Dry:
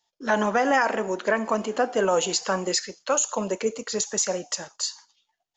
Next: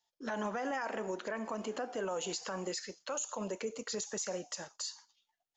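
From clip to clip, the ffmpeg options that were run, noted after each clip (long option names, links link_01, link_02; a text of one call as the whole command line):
ffmpeg -i in.wav -af "acompressor=threshold=-23dB:ratio=6,alimiter=limit=-20.5dB:level=0:latency=1:release=39,volume=-7.5dB" out.wav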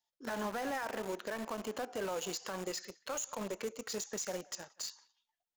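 ffmpeg -i in.wav -filter_complex "[0:a]asplit=2[link_01][link_02];[link_02]acrusher=bits=5:mix=0:aa=0.000001,volume=-4dB[link_03];[link_01][link_03]amix=inputs=2:normalize=0,asplit=2[link_04][link_05];[link_05]adelay=180,highpass=300,lowpass=3400,asoftclip=type=hard:threshold=-34dB,volume=-21dB[link_06];[link_04][link_06]amix=inputs=2:normalize=0,volume=-5.5dB" out.wav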